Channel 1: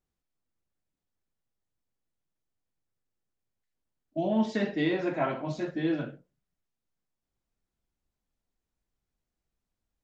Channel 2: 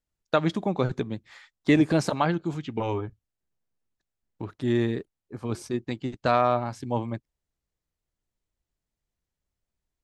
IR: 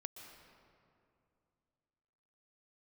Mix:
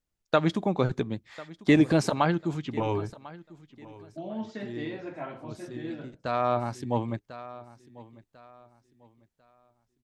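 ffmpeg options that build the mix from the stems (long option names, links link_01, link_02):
-filter_complex "[0:a]volume=-9dB,asplit=2[link_01][link_02];[1:a]volume=0dB,asplit=2[link_03][link_04];[link_04]volume=-20dB[link_05];[link_02]apad=whole_len=442439[link_06];[link_03][link_06]sidechaincompress=threshold=-50dB:ratio=8:attack=36:release=601[link_07];[link_05]aecho=0:1:1046|2092|3138|4184:1|0.29|0.0841|0.0244[link_08];[link_01][link_07][link_08]amix=inputs=3:normalize=0"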